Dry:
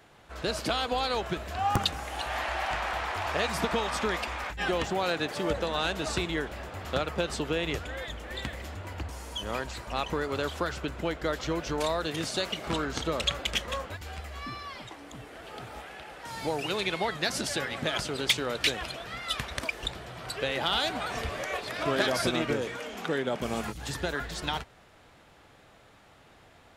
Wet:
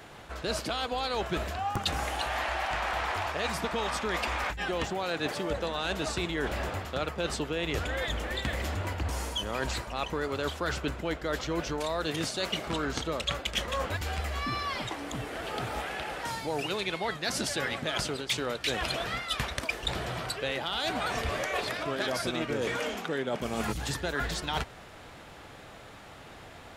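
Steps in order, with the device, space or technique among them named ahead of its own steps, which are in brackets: compression on the reversed sound (reverse; compression 12:1, threshold -36 dBFS, peak gain reduction 17.5 dB; reverse); trim +8.5 dB

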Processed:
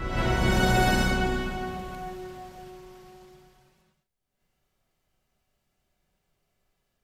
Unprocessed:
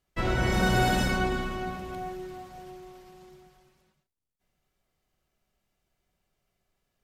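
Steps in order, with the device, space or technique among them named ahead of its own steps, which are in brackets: reverse reverb (reverse; reverberation RT60 1.1 s, pre-delay 24 ms, DRR 1.5 dB; reverse)

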